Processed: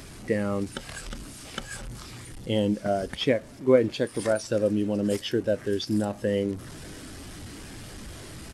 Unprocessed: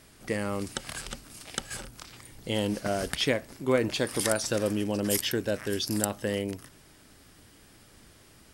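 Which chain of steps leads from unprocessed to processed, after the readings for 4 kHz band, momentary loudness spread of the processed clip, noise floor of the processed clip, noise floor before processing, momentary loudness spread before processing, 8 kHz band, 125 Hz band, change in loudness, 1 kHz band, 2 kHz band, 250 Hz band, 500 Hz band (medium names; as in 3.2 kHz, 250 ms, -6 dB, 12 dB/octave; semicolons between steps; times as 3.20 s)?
-2.5 dB, 16 LU, -44 dBFS, -56 dBFS, 13 LU, -7.0 dB, +3.0 dB, +2.5 dB, +0.5 dB, -2.0 dB, +4.0 dB, +4.5 dB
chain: one-bit delta coder 64 kbps, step -33.5 dBFS; in parallel at +3 dB: gain riding within 4 dB 0.5 s; on the sum: delay 585 ms -23.5 dB; spectral contrast expander 1.5:1; trim -2.5 dB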